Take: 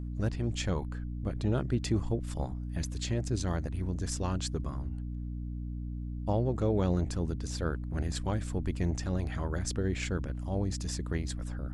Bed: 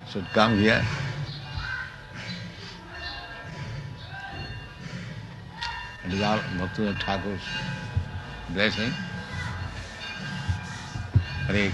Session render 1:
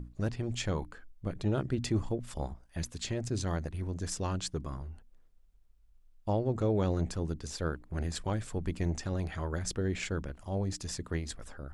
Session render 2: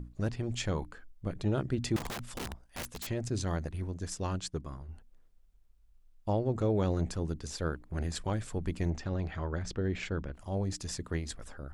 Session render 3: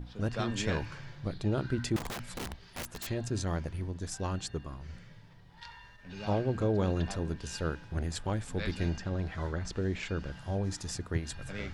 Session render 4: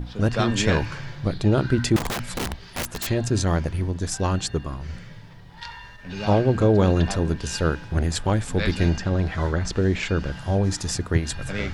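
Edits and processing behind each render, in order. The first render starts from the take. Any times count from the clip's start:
notches 60/120/180/240/300 Hz
1.96–3.07 wrapped overs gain 33.5 dB; 3.86–4.89 upward expander, over -51 dBFS; 8.9–10.34 air absorption 110 m
add bed -16.5 dB
gain +11 dB

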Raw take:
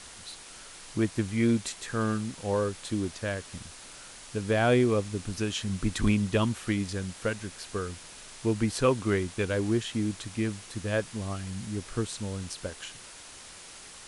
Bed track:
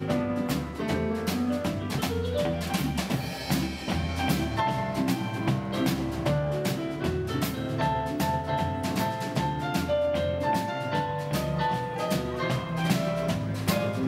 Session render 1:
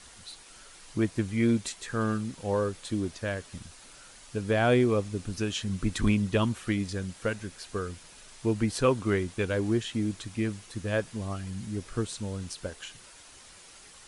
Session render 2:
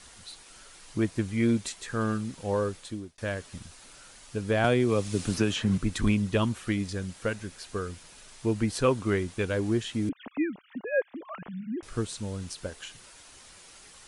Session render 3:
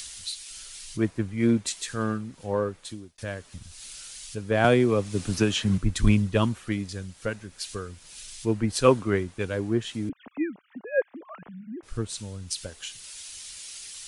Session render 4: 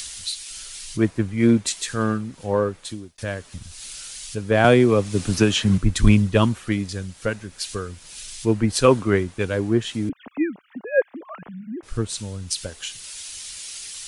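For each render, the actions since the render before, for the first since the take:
denoiser 6 dB, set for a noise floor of -47 dBFS
2.72–3.18 fade out; 4.64–5.78 three-band squash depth 100%; 10.09–11.83 sine-wave speech
upward compressor, threshold -27 dBFS; three-band expander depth 100%
gain +5.5 dB; limiter -3 dBFS, peak gain reduction 3 dB

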